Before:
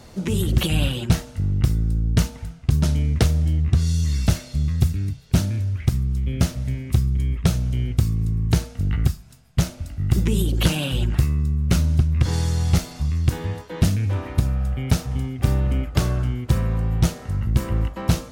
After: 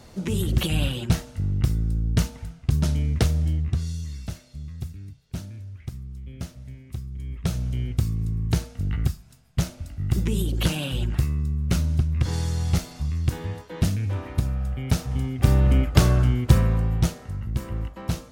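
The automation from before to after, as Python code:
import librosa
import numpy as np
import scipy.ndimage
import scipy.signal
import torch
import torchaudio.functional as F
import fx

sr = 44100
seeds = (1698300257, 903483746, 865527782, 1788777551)

y = fx.gain(x, sr, db=fx.line((3.5, -3.0), (4.25, -14.5), (7.09, -14.5), (7.61, -4.0), (14.81, -4.0), (15.72, 3.5), (16.52, 3.5), (17.39, -7.5)))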